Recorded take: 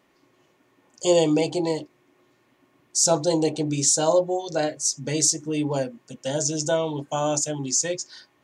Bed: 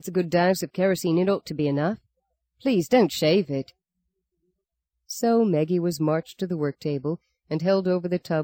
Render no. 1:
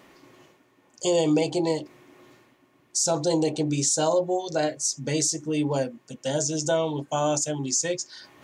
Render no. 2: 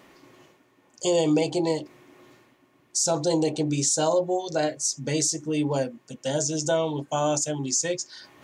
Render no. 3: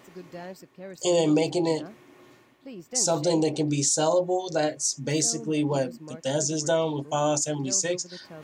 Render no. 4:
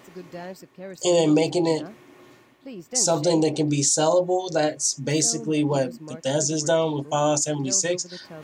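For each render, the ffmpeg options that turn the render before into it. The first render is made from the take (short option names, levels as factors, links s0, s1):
-af "areverse,acompressor=mode=upward:threshold=0.00794:ratio=2.5,areverse,alimiter=limit=0.2:level=0:latency=1:release=50"
-af anull
-filter_complex "[1:a]volume=0.106[s0];[0:a][s0]amix=inputs=2:normalize=0"
-af "volume=1.41"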